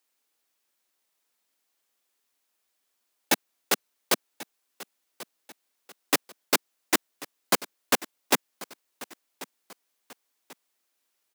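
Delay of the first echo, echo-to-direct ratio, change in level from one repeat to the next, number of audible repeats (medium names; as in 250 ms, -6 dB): 1089 ms, -17.5 dB, -8.0 dB, 2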